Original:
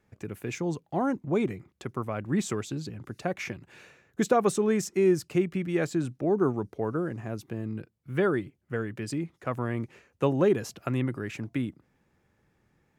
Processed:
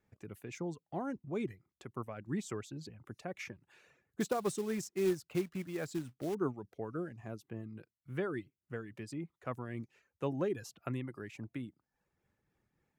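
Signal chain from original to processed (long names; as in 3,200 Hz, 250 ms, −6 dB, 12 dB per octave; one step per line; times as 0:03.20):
reverb reduction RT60 0.55 s
shaped tremolo triangle 3.6 Hz, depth 45%
0:04.20–0:06.35: floating-point word with a short mantissa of 2 bits
level −7.5 dB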